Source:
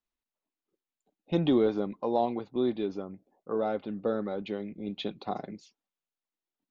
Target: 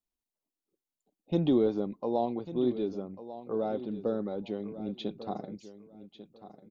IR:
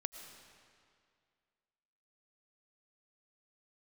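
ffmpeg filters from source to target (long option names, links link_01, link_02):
-filter_complex "[0:a]equalizer=frequency=1800:width=0.7:gain=-9.5,asplit=2[link_01][link_02];[link_02]aecho=0:1:1145|2290:0.2|0.0419[link_03];[link_01][link_03]amix=inputs=2:normalize=0"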